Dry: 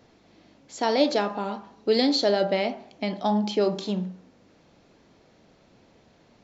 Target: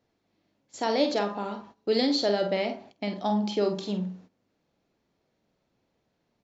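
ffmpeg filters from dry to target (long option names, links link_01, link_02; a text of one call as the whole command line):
ffmpeg -i in.wav -filter_complex "[0:a]asplit=2[link_01][link_02];[link_02]adelay=49,volume=-8.5dB[link_03];[link_01][link_03]amix=inputs=2:normalize=0,agate=range=-14dB:threshold=-45dB:ratio=16:detection=peak,volume=-3.5dB" out.wav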